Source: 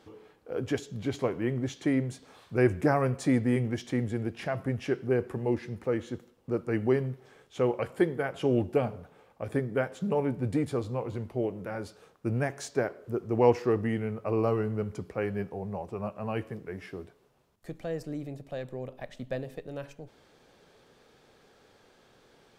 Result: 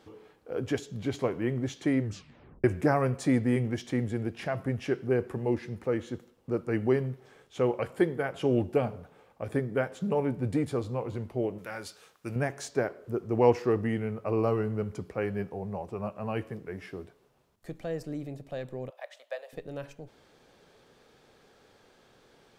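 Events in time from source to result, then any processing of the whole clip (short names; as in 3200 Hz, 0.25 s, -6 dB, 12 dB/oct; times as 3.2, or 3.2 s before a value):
2 tape stop 0.64 s
11.58–12.36 tilt shelf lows -8 dB, about 1100 Hz
18.9–19.53 elliptic high-pass 560 Hz, stop band 80 dB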